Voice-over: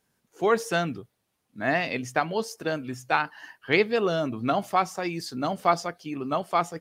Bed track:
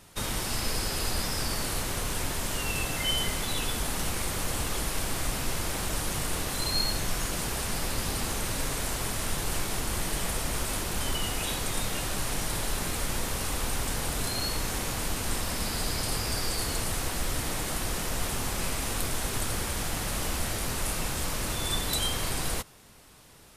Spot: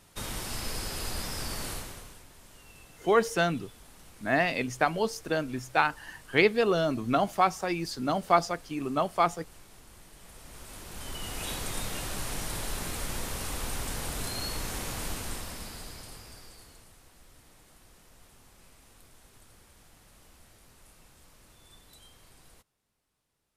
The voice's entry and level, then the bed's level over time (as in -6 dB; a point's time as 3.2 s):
2.65 s, -0.5 dB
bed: 1.71 s -5 dB
2.25 s -22.5 dB
10.15 s -22.5 dB
11.49 s -4 dB
15.11 s -4 dB
16.98 s -26.5 dB